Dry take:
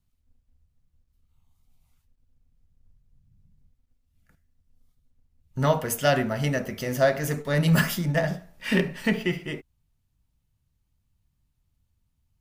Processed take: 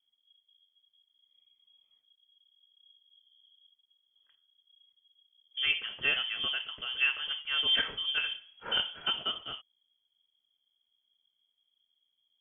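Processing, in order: frequency inversion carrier 3.3 kHz; trim -8 dB

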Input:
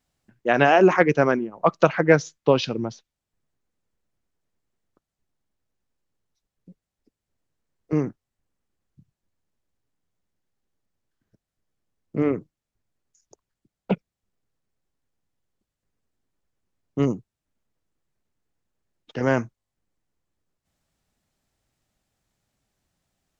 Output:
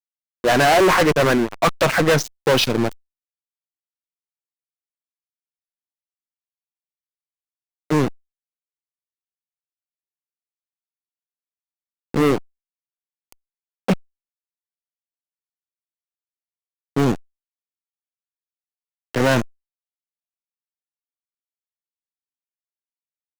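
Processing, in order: bass shelf 320 Hz -4.5 dB; tempo 1×; fuzz box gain 25 dB, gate -34 dBFS; power-law waveshaper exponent 0.5

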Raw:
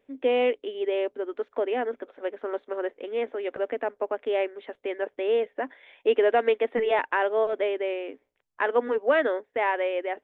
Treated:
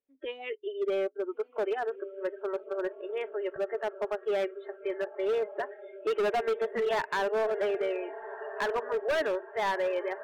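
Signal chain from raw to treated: echo that smears into a reverb 1348 ms, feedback 52%, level -12.5 dB; spectral noise reduction 24 dB; overload inside the chain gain 23 dB; trim -1.5 dB

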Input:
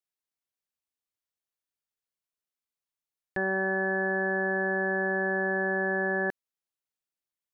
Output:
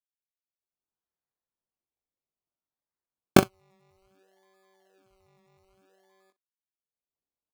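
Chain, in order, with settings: recorder AGC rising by 35 dB/s; high-pass 250 Hz 24 dB/octave; band-stop 1.5 kHz, Q 5.1; gate -15 dBFS, range -45 dB; in parallel at +2.5 dB: peak limiter -9.5 dBFS, peak gain reduction 9 dB; on the sum: decimation with a swept rate 22×, swing 60% 0.6 Hz; on a send: early reflections 21 ms -4 dB, 62 ms -16.5 dB; on the sum: trim -2.5 dB

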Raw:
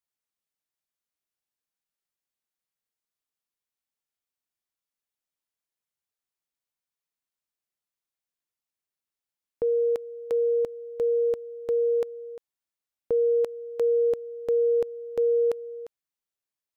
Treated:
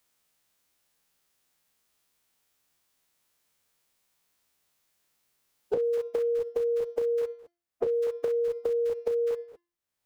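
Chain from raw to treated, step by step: every event in the spectrogram widened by 120 ms; gate with hold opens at -24 dBFS; de-hum 345 Hz, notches 17; compression 12:1, threshold -30 dBFS, peak gain reduction 11 dB; time stretch by phase-locked vocoder 0.6×; three bands compressed up and down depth 100%; trim +5 dB

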